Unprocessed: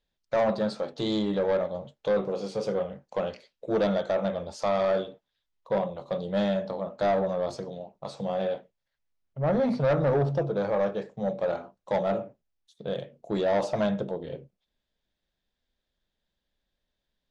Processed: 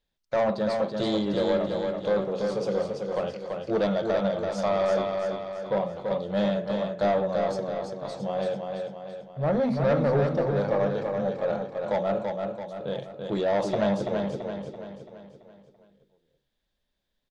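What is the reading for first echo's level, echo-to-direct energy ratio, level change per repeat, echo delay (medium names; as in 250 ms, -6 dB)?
-4.5 dB, -3.5 dB, -6.0 dB, 335 ms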